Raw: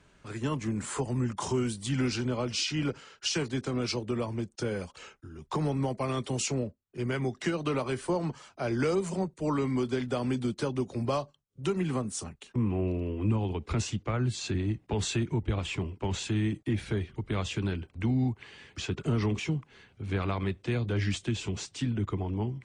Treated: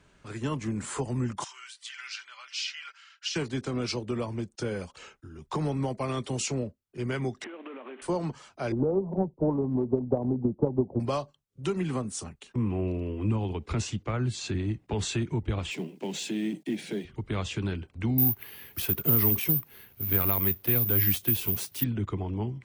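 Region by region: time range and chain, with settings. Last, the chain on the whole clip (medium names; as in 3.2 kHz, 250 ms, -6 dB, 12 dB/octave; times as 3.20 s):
1.44–3.36 s: high-pass 1.4 kHz 24 dB/octave + distance through air 81 m + comb 5.1 ms, depth 30%
7.44–8.02 s: CVSD coder 16 kbps + brick-wall FIR high-pass 210 Hz + compression 12:1, threshold -38 dBFS
8.72–11.00 s: steep low-pass 900 Hz 48 dB/octave + transient shaper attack +9 dB, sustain +1 dB
15.71–17.05 s: companding laws mixed up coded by mu + steep high-pass 160 Hz 48 dB/octave + peaking EQ 1.2 kHz -14.5 dB 0.74 oct
18.18–21.84 s: companded quantiser 6-bit + careless resampling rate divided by 3×, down filtered, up zero stuff
whole clip: none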